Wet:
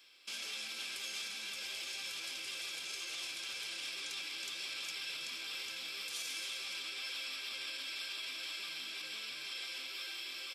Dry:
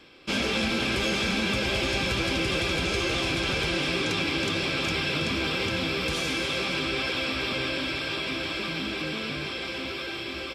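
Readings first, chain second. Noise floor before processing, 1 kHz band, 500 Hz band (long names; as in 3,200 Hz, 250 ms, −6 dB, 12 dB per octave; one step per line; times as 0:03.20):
−35 dBFS, −21.0 dB, −28.5 dB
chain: brickwall limiter −24 dBFS, peak gain reduction 8.5 dB
first difference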